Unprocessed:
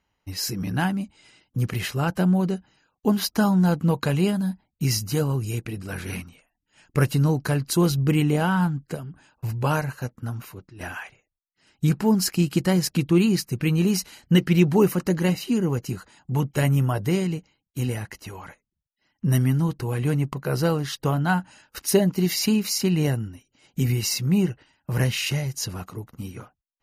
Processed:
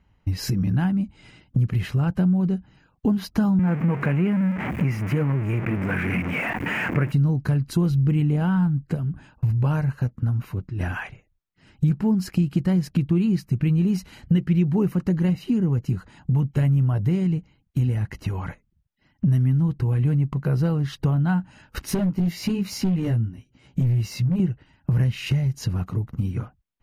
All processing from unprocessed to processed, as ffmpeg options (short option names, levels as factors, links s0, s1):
-filter_complex "[0:a]asettb=1/sr,asplit=3[s0][s1][s2];[s0]atrim=end=3.594[s3];[s1]atrim=start=3.59:end=7.12,asetpts=PTS-STARTPTS,afade=t=in:d=0.004:c=qsin,afade=t=out:st=3.526:d=0.004:c=qsin,aeval=exprs='val(0)+0.5*0.0668*sgn(val(0))':c=same,highpass=200,highshelf=f=3000:t=q:w=3:g=-10[s4];[s2]atrim=start=7.116[s5];[s3][s4]acrossfade=d=0.004:c1=hsin:c2=qsin[s6];[s6][s5]acrossfade=d=0.004:c1=qsin:c2=hsin,asettb=1/sr,asplit=3[s7][s8][s9];[s7]atrim=end=21.854[s10];[s8]atrim=start=21.85:end=24.4,asetpts=PTS-STARTPTS,afade=t=in:d=0.004:c=qsin,afade=t=out:st=2.546:d=0.004:c=qsin,flanger=delay=15.5:depth=2.2:speed=1.1,asoftclip=type=hard:threshold=0.075[s11];[s9]atrim=start=24.396[s12];[s10][s11]acrossfade=d=0.004:c1=hsin:c2=qsin[s13];[s13][s12]acrossfade=d=0.004:c1=qsin:c2=hsin,bass=f=250:g=13,treble=f=4000:g=-10,acompressor=threshold=0.0398:ratio=3,volume=1.78"